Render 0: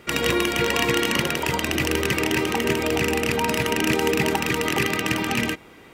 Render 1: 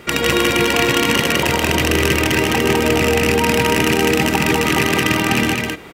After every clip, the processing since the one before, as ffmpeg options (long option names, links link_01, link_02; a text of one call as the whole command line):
ffmpeg -i in.wav -filter_complex "[0:a]acompressor=threshold=-28dB:ratio=1.5,asplit=2[link_01][link_02];[link_02]aecho=0:1:154.5|204.1:0.316|0.708[link_03];[link_01][link_03]amix=inputs=2:normalize=0,volume=8dB" out.wav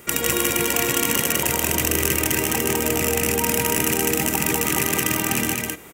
ffmpeg -i in.wav -af "acontrast=26,aexciter=amount=6:drive=3.1:freq=6200,volume=-12dB" out.wav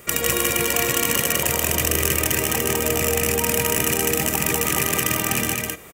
ffmpeg -i in.wav -af "aecho=1:1:1.7:0.34" out.wav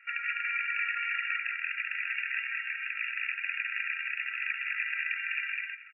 ffmpeg -i in.wav -af "afftfilt=real='re*between(b*sr/4096,1300,2800)':imag='im*between(b*sr/4096,1300,2800)':win_size=4096:overlap=0.75,aecho=1:1:226:0.15,volume=-3.5dB" out.wav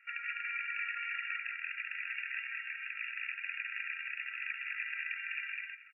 ffmpeg -i in.wav -af "bass=frequency=250:gain=10,treble=frequency=4000:gain=4,volume=-6.5dB" out.wav